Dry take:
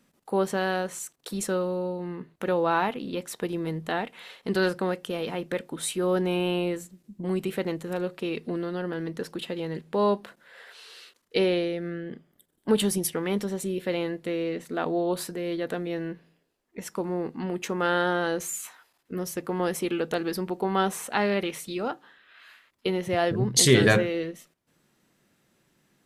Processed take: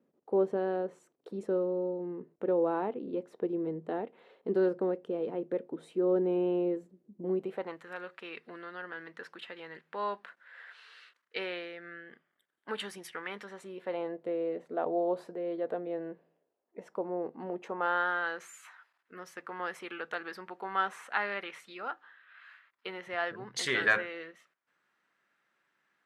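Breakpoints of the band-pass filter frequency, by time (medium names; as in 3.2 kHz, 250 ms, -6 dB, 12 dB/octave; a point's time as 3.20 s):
band-pass filter, Q 1.7
7.33 s 410 Hz
7.84 s 1.6 kHz
13.45 s 1.6 kHz
14.17 s 600 Hz
17.58 s 600 Hz
18.12 s 1.5 kHz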